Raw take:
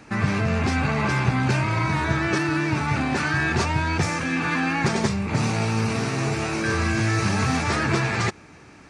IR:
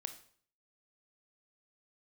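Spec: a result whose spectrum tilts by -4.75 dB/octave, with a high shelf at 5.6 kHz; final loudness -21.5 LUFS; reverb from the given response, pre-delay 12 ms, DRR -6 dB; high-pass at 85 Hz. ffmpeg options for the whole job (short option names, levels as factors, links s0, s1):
-filter_complex "[0:a]highpass=85,highshelf=f=5600:g=-3,asplit=2[s0][s1];[1:a]atrim=start_sample=2205,adelay=12[s2];[s1][s2]afir=irnorm=-1:irlink=0,volume=2.66[s3];[s0][s3]amix=inputs=2:normalize=0,volume=0.562"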